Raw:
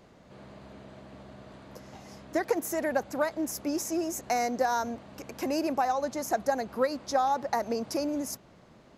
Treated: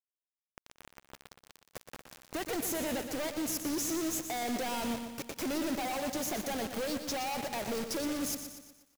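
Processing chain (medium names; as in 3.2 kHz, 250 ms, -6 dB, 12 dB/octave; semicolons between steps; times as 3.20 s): companded quantiser 2-bit; dynamic bell 970 Hz, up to -5 dB, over -38 dBFS, Q 0.81; on a send: delay 180 ms -19.5 dB; on the sum: bit-crushed delay 120 ms, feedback 55%, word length 9-bit, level -8.5 dB; trim -6.5 dB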